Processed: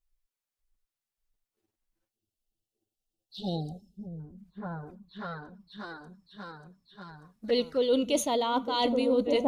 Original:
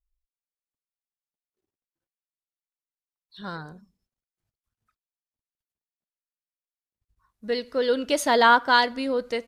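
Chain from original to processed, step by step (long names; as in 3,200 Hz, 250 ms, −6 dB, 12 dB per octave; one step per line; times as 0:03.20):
echo whose low-pass opens from repeat to repeat 589 ms, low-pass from 200 Hz, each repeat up 2 octaves, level 0 dB
reversed playback
downward compressor 8 to 1, threshold −28 dBFS, peak gain reduction 16 dB
reversed playback
flanger swept by the level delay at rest 9.2 ms, full sweep at −31.5 dBFS
time-frequency box erased 0:02.11–0:04.20, 840–2,600 Hz
level +7 dB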